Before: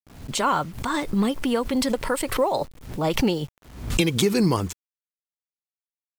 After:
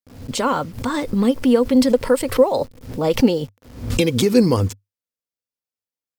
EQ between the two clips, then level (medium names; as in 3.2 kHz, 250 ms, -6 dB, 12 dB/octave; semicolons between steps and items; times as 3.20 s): graphic EQ with 31 bands 100 Hz +11 dB, 250 Hz +10 dB, 500 Hz +11 dB, 5 kHz +4 dB, 16 kHz +3 dB; 0.0 dB